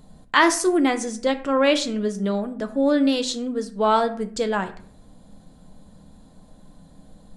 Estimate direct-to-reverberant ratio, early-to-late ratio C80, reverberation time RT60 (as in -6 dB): 7.5 dB, 17.0 dB, 0.55 s